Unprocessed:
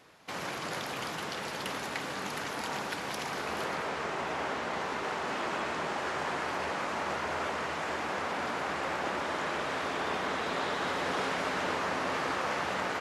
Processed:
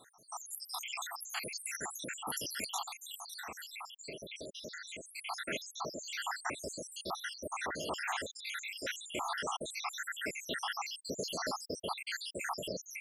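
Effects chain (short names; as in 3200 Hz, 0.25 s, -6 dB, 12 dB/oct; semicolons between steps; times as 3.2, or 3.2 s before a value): random spectral dropouts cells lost 84%; pre-emphasis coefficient 0.8; 2.85–5.08 compressor 4:1, threshold -56 dBFS, peak gain reduction 9 dB; gain +13 dB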